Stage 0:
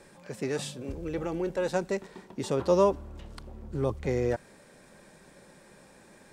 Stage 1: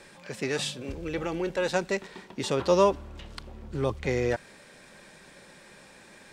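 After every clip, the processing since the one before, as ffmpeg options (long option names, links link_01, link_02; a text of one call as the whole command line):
ffmpeg -i in.wav -af "equalizer=frequency=3000:width_type=o:width=2.4:gain=9" out.wav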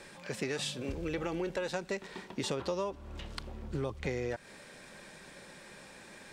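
ffmpeg -i in.wav -af "acompressor=threshold=-31dB:ratio=10" out.wav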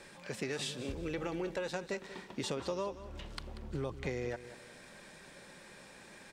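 ffmpeg -i in.wav -af "aecho=1:1:187|374|561:0.2|0.0599|0.018,volume=-2.5dB" out.wav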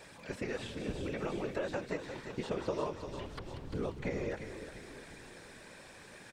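ffmpeg -i in.wav -filter_complex "[0:a]afftfilt=real='hypot(re,im)*cos(2*PI*random(0))':imag='hypot(re,im)*sin(2*PI*random(1))':win_size=512:overlap=0.75,asplit=7[link_01][link_02][link_03][link_04][link_05][link_06][link_07];[link_02]adelay=347,afreqshift=-35,volume=-10dB[link_08];[link_03]adelay=694,afreqshift=-70,volume=-15.4dB[link_09];[link_04]adelay=1041,afreqshift=-105,volume=-20.7dB[link_10];[link_05]adelay=1388,afreqshift=-140,volume=-26.1dB[link_11];[link_06]adelay=1735,afreqshift=-175,volume=-31.4dB[link_12];[link_07]adelay=2082,afreqshift=-210,volume=-36.8dB[link_13];[link_01][link_08][link_09][link_10][link_11][link_12][link_13]amix=inputs=7:normalize=0,acrossover=split=2500[link_14][link_15];[link_15]acompressor=threshold=-59dB:ratio=4:attack=1:release=60[link_16];[link_14][link_16]amix=inputs=2:normalize=0,volume=6.5dB" out.wav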